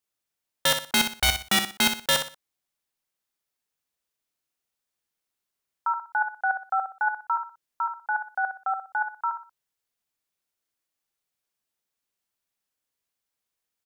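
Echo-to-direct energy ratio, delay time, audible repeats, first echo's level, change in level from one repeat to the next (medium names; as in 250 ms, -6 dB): -7.5 dB, 61 ms, 3, -8.0 dB, -10.5 dB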